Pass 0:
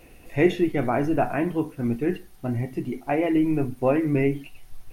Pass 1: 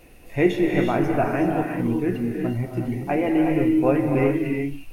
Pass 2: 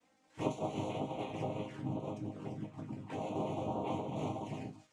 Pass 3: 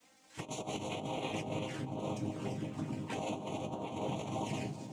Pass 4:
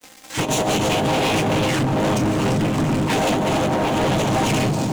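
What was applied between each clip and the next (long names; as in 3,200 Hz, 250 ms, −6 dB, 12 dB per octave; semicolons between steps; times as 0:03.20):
reverb whose tail is shaped and stops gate 410 ms rising, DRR 1.5 dB
cochlear-implant simulation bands 4; flanger swept by the level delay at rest 4.1 ms, full sweep at −19.5 dBFS; resonators tuned to a chord G#2 major, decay 0.22 s; level −4.5 dB
high-shelf EQ 2,300 Hz +11 dB; compressor whose output falls as the input rises −39 dBFS, ratio −0.5; echo through a band-pass that steps 194 ms, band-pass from 170 Hz, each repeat 0.7 octaves, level −4.5 dB; level +1 dB
leveller curve on the samples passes 5; level +9 dB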